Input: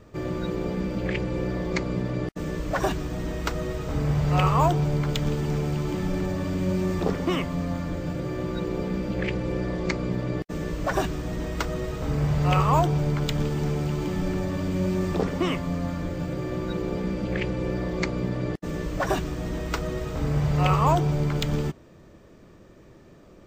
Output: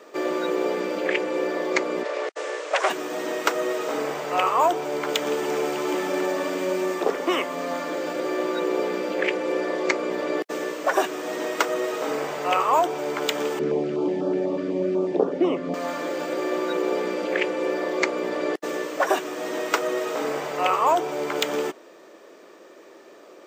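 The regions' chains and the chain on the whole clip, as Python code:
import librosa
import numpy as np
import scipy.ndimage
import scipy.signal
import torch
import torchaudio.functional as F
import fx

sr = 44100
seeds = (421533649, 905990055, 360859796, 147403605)

y = fx.chain(x, sr, fx.self_delay(depth_ms=0.38),
    fx.cheby1_bandpass(low_hz=460.0, high_hz=7900.0, order=3), at=(2.03, 2.9))
y = fx.chain(y, sr, fx.lowpass(hz=7600.0, slope=12),
    fx.tilt_eq(slope=-4.5),
    fx.filter_held_notch(hz=8.1, low_hz=820.0, high_hz=2100.0), at=(13.59, 15.74))
y = scipy.signal.sosfilt(scipy.signal.butter(4, 360.0, 'highpass', fs=sr, output='sos'), y)
y = fx.dynamic_eq(y, sr, hz=4400.0, q=2.1, threshold_db=-52.0, ratio=4.0, max_db=-5)
y = fx.rider(y, sr, range_db=3, speed_s=0.5)
y = y * 10.0 ** (6.0 / 20.0)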